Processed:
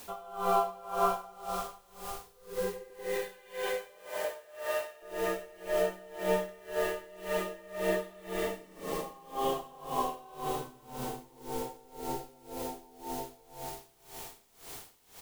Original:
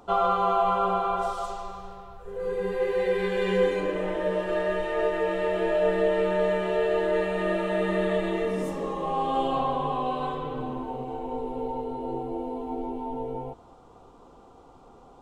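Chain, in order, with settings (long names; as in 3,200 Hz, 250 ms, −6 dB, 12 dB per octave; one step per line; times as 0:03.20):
0:02.90–0:05.02: Chebyshev high-pass filter 570 Hz, order 3
background noise white −44 dBFS
loudspeakers that aren't time-aligned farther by 30 metres −5 dB, 55 metres −4 dB
convolution reverb RT60 3.7 s, pre-delay 25 ms, DRR 1.5 dB
tremolo with a sine in dB 1.9 Hz, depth 24 dB
level −5 dB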